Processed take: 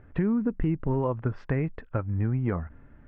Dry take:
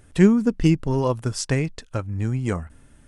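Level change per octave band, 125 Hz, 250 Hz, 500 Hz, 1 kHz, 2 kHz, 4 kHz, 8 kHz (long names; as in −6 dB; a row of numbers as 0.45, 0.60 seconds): −4.5 dB, −7.5 dB, −7.0 dB, −4.5 dB, −8.5 dB, below −20 dB, below −40 dB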